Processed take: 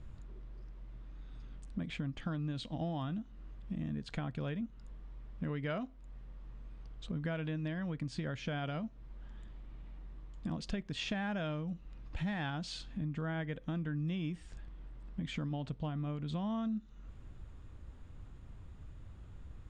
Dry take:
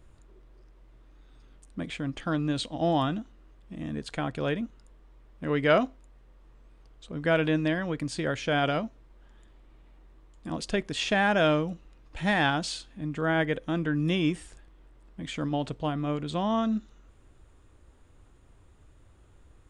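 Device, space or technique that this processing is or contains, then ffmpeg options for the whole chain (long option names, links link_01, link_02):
jukebox: -af "lowpass=5800,lowshelf=frequency=260:width_type=q:width=1.5:gain=6.5,acompressor=threshold=-36dB:ratio=5"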